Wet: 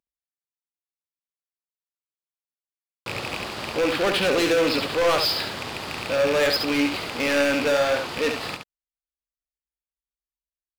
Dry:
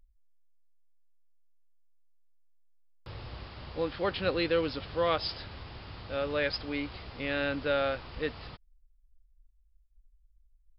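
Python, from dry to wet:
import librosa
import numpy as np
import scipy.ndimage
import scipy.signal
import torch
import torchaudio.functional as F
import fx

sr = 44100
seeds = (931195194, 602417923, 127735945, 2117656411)

y = fx.rattle_buzz(x, sr, strikes_db=-40.0, level_db=-29.0)
y = scipy.signal.sosfilt(scipy.signal.butter(2, 200.0, 'highpass', fs=sr, output='sos'), y)
y = fx.leveller(y, sr, passes=5)
y = y + 10.0 ** (-6.0 / 20.0) * np.pad(y, (int(70 * sr / 1000.0), 0))[:len(y)]
y = F.gain(torch.from_numpy(y), -2.5).numpy()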